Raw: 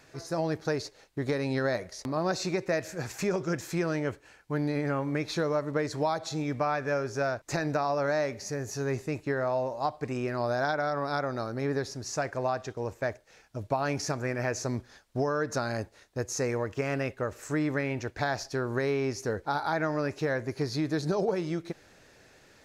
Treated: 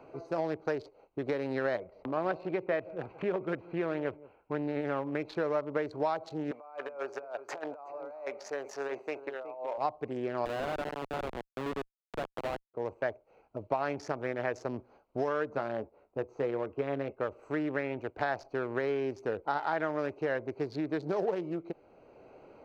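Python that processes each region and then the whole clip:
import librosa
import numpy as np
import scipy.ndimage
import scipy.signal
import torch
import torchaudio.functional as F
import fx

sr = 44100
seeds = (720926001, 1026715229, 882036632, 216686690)

y = fx.chain(x, sr, fx.lowpass(hz=3800.0, slope=24),
    fx.echo_single(ms=171, db=-19.5), at=(1.78, 4.81))
y = fx.chain(y, sr, fx.highpass(hz=620.0, slope=12),
    fx.over_compress(threshold_db=-37.0, ratio=-0.5),
    fx.echo_single(ms=369, db=-12.5), at=(6.51, 9.78))
y = fx.chain(y, sr, fx.schmitt(flips_db=-27.0),
    fx.doppler_dist(depth_ms=0.16), at=(10.45, 12.74))
y = fx.chain(y, sr, fx.lowpass(hz=1600.0, slope=6),
    fx.doubler(ms=14.0, db=-8.5), at=(15.49, 17.19))
y = fx.wiener(y, sr, points=25)
y = fx.bass_treble(y, sr, bass_db=-12, treble_db=-14)
y = fx.band_squash(y, sr, depth_pct=40)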